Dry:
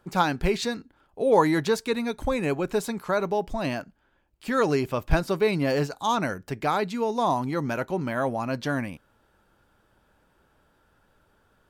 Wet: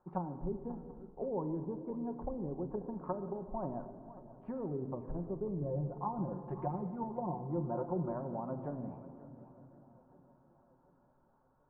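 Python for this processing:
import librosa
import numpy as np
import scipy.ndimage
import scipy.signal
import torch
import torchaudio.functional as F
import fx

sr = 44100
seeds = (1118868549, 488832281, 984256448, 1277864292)

y = fx.env_lowpass_down(x, sr, base_hz=320.0, full_db=-22.0)
y = fx.comb(y, sr, ms=5.7, depth=0.97, at=(5.61, 8.12))
y = fx.over_compress(y, sr, threshold_db=-23.0, ratio=-1.0)
y = fx.ladder_lowpass(y, sr, hz=1100.0, resonance_pct=55)
y = fx.echo_feedback(y, sr, ms=733, feedback_pct=60, wet_db=-24.0)
y = fx.room_shoebox(y, sr, seeds[0], volume_m3=3300.0, walls='mixed', distance_m=1.0)
y = fx.echo_warbled(y, sr, ms=538, feedback_pct=37, rate_hz=2.8, cents=78, wet_db=-16)
y = y * librosa.db_to_amplitude(-2.5)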